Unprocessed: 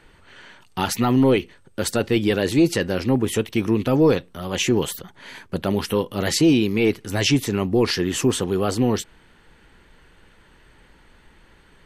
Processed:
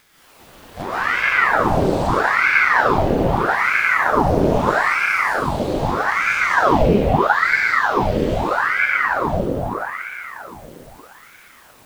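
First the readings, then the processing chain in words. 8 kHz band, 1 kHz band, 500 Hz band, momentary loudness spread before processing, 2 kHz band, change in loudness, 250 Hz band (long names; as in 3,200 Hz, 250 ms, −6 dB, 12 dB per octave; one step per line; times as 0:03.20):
−9.5 dB, +14.0 dB, +1.5 dB, 11 LU, +15.5 dB, +4.0 dB, −3.5 dB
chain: spectrum averaged block by block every 400 ms
treble cut that deepens with the level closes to 2,900 Hz, closed at −22 dBFS
high-pass filter 110 Hz
high-shelf EQ 3,500 Hz +11.5 dB
bit-depth reduction 8 bits, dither triangular
tilt shelving filter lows +5 dB, about 710 Hz
on a send: delay with a band-pass on its return 117 ms, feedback 78%, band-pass 570 Hz, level −4 dB
on the sum: delay with pitch and tempo change per echo 204 ms, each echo +6 semitones, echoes 2, each echo −6 dB
dense smooth reverb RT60 3.4 s, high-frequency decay 0.65×, pre-delay 110 ms, DRR −8.5 dB
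ring modulator whose carrier an LFO sweeps 1,000 Hz, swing 90%, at 0.79 Hz
level −4.5 dB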